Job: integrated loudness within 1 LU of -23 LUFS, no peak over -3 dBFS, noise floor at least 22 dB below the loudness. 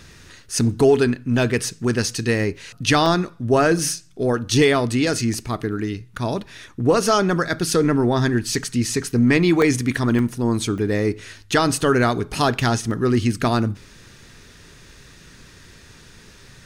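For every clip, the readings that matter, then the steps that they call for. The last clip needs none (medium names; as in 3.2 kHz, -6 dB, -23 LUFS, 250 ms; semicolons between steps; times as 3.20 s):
dropouts 8; longest dropout 1.2 ms; loudness -20.0 LUFS; peak level -6.0 dBFS; loudness target -23.0 LUFS
-> interpolate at 0.71/3.06/3.79/5.34/9.62/10.19/10.78/12.91 s, 1.2 ms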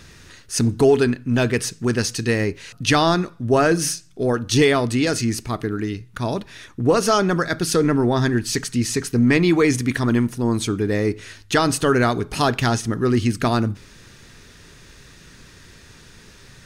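dropouts 0; loudness -20.0 LUFS; peak level -6.0 dBFS; loudness target -23.0 LUFS
-> trim -3 dB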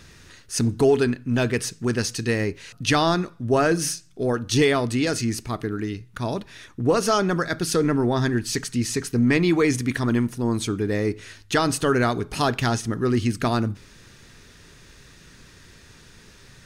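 loudness -23.0 LUFS; peak level -9.0 dBFS; noise floor -50 dBFS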